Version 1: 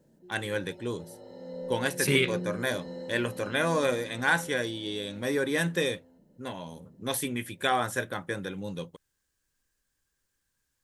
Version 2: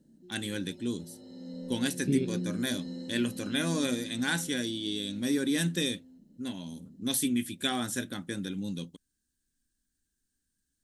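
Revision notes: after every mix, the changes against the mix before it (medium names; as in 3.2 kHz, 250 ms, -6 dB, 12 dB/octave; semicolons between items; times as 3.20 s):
second voice: add boxcar filter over 44 samples; master: add graphic EQ 125/250/500/1000/2000/4000/8000 Hz -5/+10/-10/-10/-5/+4/+4 dB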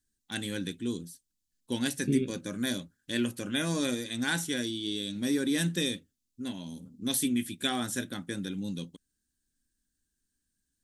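background: muted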